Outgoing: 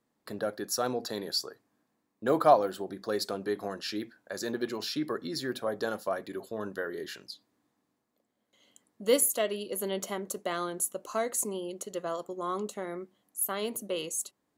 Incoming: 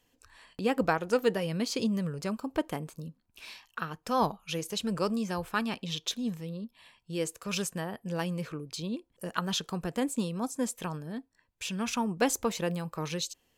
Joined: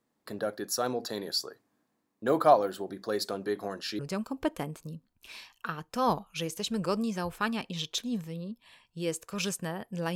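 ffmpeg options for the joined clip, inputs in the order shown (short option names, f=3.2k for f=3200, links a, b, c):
-filter_complex "[0:a]apad=whole_dur=10.15,atrim=end=10.15,atrim=end=3.992[a];[1:a]atrim=start=2.118:end=8.28[b];[a][b]acrossfade=d=0.004:c1=hsin:c2=hsin"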